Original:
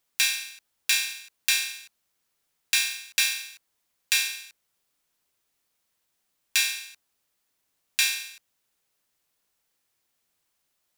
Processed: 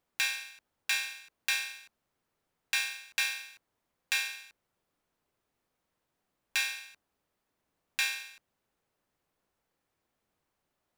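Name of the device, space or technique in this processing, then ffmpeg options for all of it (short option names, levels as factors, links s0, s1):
through cloth: -af "highshelf=f=2100:g=-17.5,volume=1.78"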